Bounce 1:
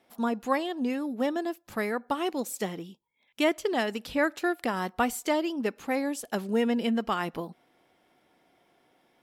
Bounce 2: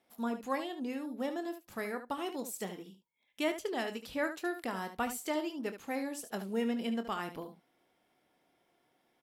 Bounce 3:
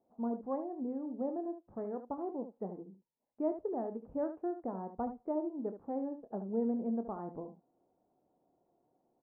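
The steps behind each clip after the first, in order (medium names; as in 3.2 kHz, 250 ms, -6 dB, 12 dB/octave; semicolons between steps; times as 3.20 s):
treble shelf 6.8 kHz +4.5 dB; on a send: early reflections 26 ms -11.5 dB, 73 ms -10.5 dB; on the sum: trim -8.5 dB
inverse Chebyshev low-pass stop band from 3.7 kHz, stop band 70 dB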